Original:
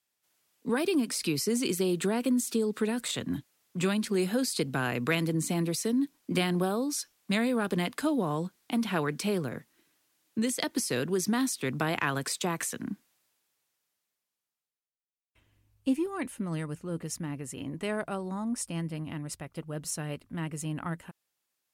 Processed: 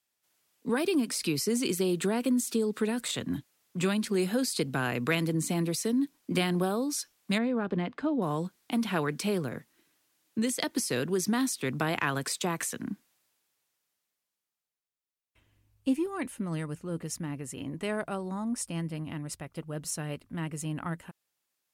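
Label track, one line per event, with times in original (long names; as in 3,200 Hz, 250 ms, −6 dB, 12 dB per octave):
7.380000	8.220000	head-to-tape spacing loss at 10 kHz 31 dB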